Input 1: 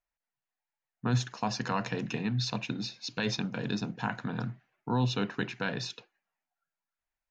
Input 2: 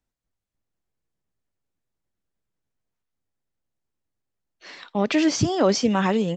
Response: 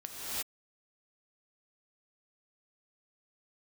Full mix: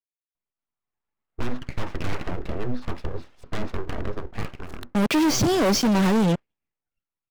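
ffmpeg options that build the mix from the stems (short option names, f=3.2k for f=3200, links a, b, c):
-filter_complex "[0:a]lowpass=f=1.2k:t=q:w=3.7,equalizer=f=92:t=o:w=0.24:g=-7.5,aeval=exprs='abs(val(0))':c=same,adelay=350,volume=-9.5dB[a];[1:a]acrusher=bits=4:mix=0:aa=0.5,volume=2.5dB[b];[a][b]amix=inputs=2:normalize=0,lowshelf=f=410:g=7,dynaudnorm=f=260:g=7:m=13dB,asoftclip=type=hard:threshold=-17.5dB"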